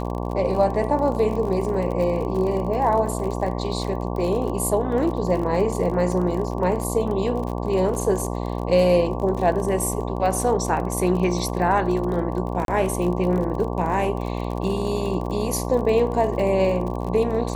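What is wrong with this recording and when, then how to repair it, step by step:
buzz 60 Hz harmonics 19 -27 dBFS
crackle 42/s -29 dBFS
12.65–12.68 gap 32 ms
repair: de-click; de-hum 60 Hz, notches 19; interpolate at 12.65, 32 ms

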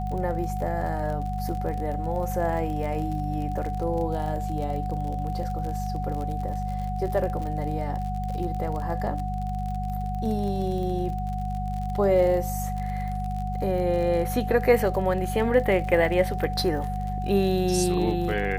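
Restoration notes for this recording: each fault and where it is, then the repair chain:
crackle 46/s -32 dBFS
hum 50 Hz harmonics 4 -30 dBFS
tone 740 Hz -32 dBFS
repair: de-click; notch 740 Hz, Q 30; de-hum 50 Hz, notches 4

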